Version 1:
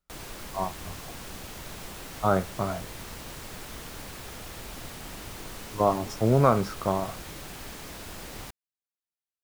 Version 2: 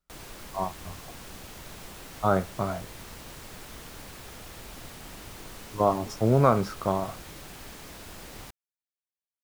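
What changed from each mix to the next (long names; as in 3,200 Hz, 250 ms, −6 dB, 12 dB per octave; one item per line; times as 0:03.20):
background −3.0 dB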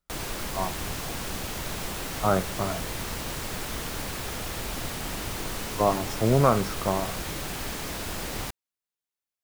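background +10.5 dB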